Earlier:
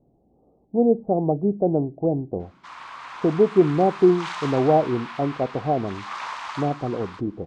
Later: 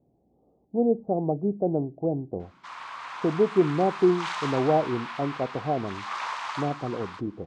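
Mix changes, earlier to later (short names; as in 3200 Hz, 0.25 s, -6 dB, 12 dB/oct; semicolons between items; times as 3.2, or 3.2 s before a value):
speech -4.5 dB; master: add HPF 48 Hz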